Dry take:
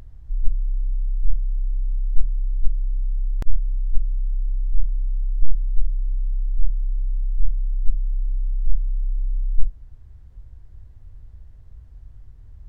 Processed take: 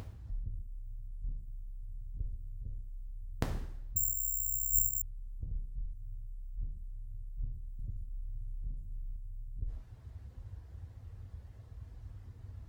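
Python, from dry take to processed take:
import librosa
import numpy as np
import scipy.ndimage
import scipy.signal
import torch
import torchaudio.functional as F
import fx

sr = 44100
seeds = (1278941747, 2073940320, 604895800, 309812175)

y = scipy.signal.sosfilt(scipy.signal.butter(2, 85.0, 'highpass', fs=sr, output='sos'), x)
y = fx.dereverb_blind(y, sr, rt60_s=0.98)
y = fx.rev_double_slope(y, sr, seeds[0], early_s=0.73, late_s=1.9, knee_db=-27, drr_db=1.0)
y = fx.resample_bad(y, sr, factor=6, down='filtered', up='zero_stuff', at=(3.96, 5.02))
y = fx.band_squash(y, sr, depth_pct=100, at=(7.79, 9.16))
y = F.gain(torch.from_numpy(y), 2.5).numpy()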